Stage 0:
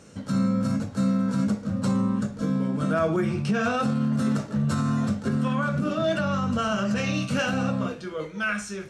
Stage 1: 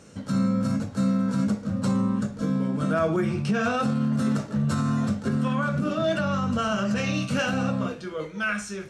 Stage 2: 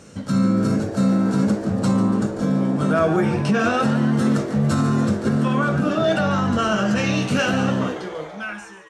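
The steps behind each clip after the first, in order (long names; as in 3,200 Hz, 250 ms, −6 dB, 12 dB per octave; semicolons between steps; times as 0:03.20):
no processing that can be heard
fade-out on the ending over 1.17 s; echo with shifted repeats 143 ms, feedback 64%, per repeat +120 Hz, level −12.5 dB; level +5 dB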